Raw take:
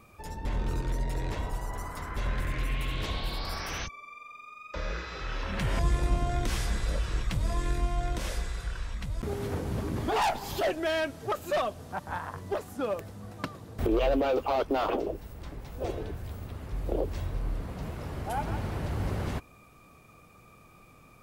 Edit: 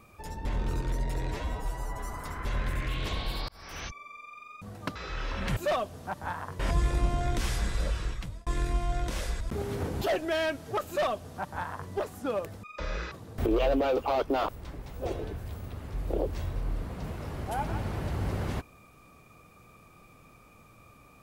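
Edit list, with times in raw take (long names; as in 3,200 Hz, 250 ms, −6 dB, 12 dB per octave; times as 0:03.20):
0:01.28–0:01.85: time-stretch 1.5×
0:02.60–0:02.86: remove
0:03.46–0:03.97: fade in
0:04.59–0:05.07: swap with 0:13.18–0:13.52
0:07.03–0:07.55: fade out
0:08.49–0:09.12: remove
0:09.73–0:10.56: remove
0:11.42–0:12.45: duplicate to 0:05.68
0:14.89–0:15.27: remove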